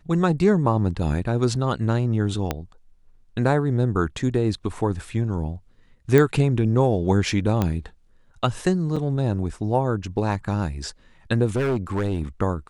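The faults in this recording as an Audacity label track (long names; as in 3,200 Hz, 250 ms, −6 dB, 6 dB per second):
2.510000	2.510000	click −9 dBFS
6.180000	6.180000	click −6 dBFS
7.620000	7.620000	click −10 dBFS
8.960000	8.970000	drop-out 5.4 ms
11.560000	12.230000	clipping −19 dBFS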